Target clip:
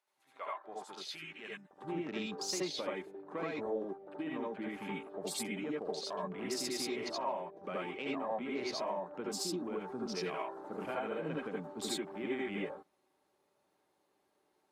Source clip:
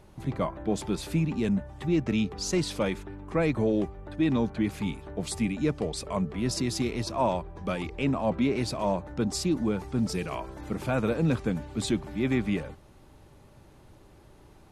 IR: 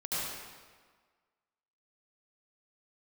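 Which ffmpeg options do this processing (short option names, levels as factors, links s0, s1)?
-filter_complex "[0:a]asetnsamples=n=441:p=0,asendcmd='1.71 highpass f 360',highpass=1100,afwtdn=0.00708,acompressor=threshold=0.0224:ratio=6[s0];[1:a]atrim=start_sample=2205,atrim=end_sample=3969[s1];[s0][s1]afir=irnorm=-1:irlink=0"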